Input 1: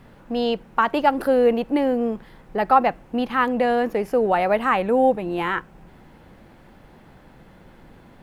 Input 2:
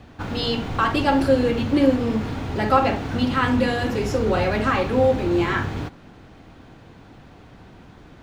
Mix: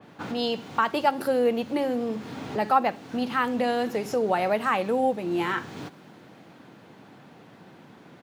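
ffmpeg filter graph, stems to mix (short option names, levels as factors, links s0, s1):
-filter_complex "[0:a]volume=0.562,asplit=2[s0][s1];[1:a]adelay=0.8,volume=0.668[s2];[s1]apad=whole_len=362711[s3];[s2][s3]sidechaincompress=threshold=0.0224:ratio=8:attack=20:release=526[s4];[s0][s4]amix=inputs=2:normalize=0,highpass=f=140:w=0.5412,highpass=f=140:w=1.3066,adynamicequalizer=threshold=0.00708:dfrequency=3500:dqfactor=0.7:tfrequency=3500:tqfactor=0.7:attack=5:release=100:ratio=0.375:range=3.5:mode=boostabove:tftype=highshelf"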